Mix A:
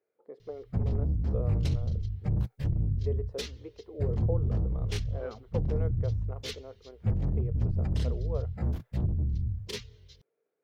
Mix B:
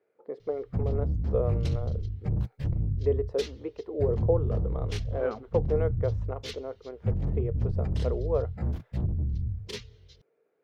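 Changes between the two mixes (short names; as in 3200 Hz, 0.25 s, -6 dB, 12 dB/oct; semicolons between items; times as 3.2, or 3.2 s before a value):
speech +9.0 dB; master: add high shelf 9300 Hz -7.5 dB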